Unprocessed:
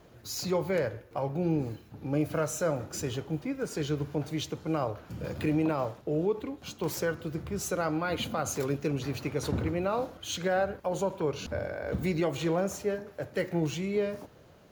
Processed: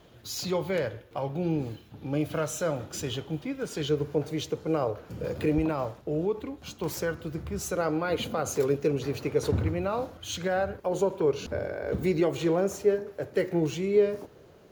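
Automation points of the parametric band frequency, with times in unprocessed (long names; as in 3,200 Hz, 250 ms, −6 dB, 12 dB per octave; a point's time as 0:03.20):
parametric band +8.5 dB 0.51 octaves
3,300 Hz
from 0:03.89 460 Hz
from 0:05.58 64 Hz
from 0:07.76 440 Hz
from 0:09.52 92 Hz
from 0:10.78 400 Hz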